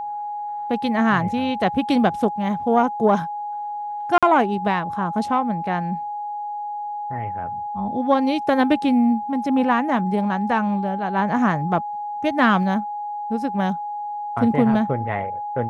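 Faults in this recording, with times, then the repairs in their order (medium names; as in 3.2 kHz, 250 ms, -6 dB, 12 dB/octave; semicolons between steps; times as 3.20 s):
whine 830 Hz -26 dBFS
4.18–4.23 s: dropout 46 ms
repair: band-stop 830 Hz, Q 30; interpolate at 4.18 s, 46 ms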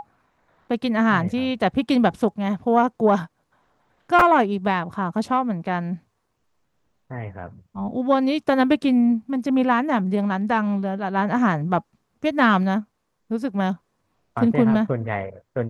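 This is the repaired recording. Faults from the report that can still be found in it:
nothing left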